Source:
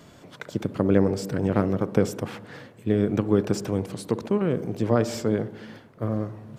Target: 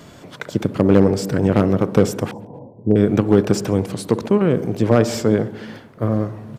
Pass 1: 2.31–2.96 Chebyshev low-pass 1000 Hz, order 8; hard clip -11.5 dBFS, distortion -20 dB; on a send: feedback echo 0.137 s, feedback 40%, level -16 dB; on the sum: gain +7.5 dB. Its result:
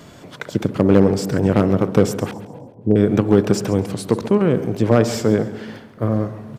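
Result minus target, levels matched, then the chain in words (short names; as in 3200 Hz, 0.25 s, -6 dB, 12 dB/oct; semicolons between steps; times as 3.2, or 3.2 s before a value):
echo-to-direct +11 dB
2.31–2.96 Chebyshev low-pass 1000 Hz, order 8; hard clip -11.5 dBFS, distortion -20 dB; on a send: feedback echo 0.137 s, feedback 40%, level -27 dB; on the sum: gain +7.5 dB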